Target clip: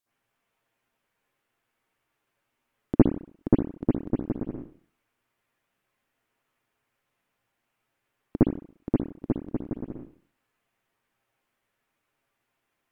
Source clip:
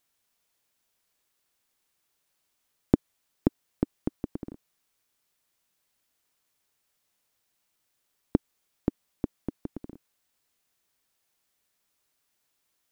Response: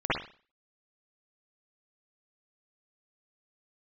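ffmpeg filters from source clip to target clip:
-filter_complex "[1:a]atrim=start_sample=2205,asetrate=37044,aresample=44100[a];[0:a][a]afir=irnorm=-1:irlink=0,volume=-9dB"

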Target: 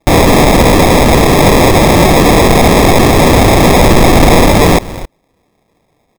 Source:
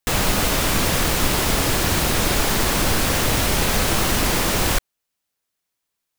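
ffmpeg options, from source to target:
-filter_complex "[0:a]bass=f=250:g=-2,treble=f=4k:g=-11,asettb=1/sr,asplit=3[a][b][c];[a]atrim=end=3.794[d];[b]atrim=start=3.79:end=4.47,asetpts=PTS-STARTPTS,afade=t=in:d=0.004:c=qsin,afade=t=out:st=0.676:d=0.004:c=qsin,asoftclip=type=hard:threshold=-23dB[e];[c]atrim=start=4.466[f];[d][e]acrossfade=d=0.004:c1=hsin:c2=qsin[g];[g][f]acrossfade=d=0.004:c1=qsin:c2=hsin,equalizer=f=7.9k:t=o:w=2.1:g=-8,asplit=2[h][i];[i]adelay=268.2,volume=-30dB,highshelf=f=4k:g=-6.04[j];[h][j]amix=inputs=2:normalize=0,acrusher=samples=30:mix=1:aa=0.000001,aeval=exprs='0.0708*(abs(mod(val(0)/0.0708+3,4)-2)-1)':c=same,acontrast=75,alimiter=level_in=24dB:limit=-1dB:release=50:level=0:latency=1,volume=-1dB"

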